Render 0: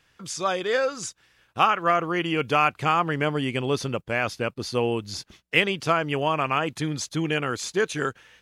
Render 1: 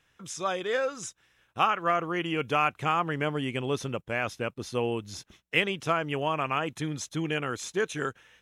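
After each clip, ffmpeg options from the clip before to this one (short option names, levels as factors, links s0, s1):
-af "bandreject=f=4600:w=5.2,volume=0.596"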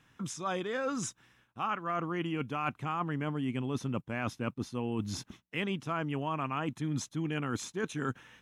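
-af "equalizer=f=125:t=o:w=1:g=7,equalizer=f=250:t=o:w=1:g=11,equalizer=f=500:t=o:w=1:g=-3,equalizer=f=1000:t=o:w=1:g=6,areverse,acompressor=threshold=0.0316:ratio=10,areverse"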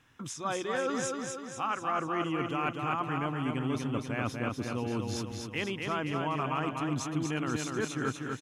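-af "equalizer=f=180:t=o:w=0.3:g=-9,aecho=1:1:244|488|732|976|1220|1464|1708:0.631|0.341|0.184|0.0994|0.0537|0.029|0.0156,volume=1.12"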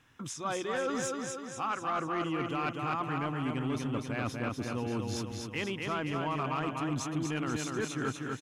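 -af "asoftclip=type=tanh:threshold=0.0708"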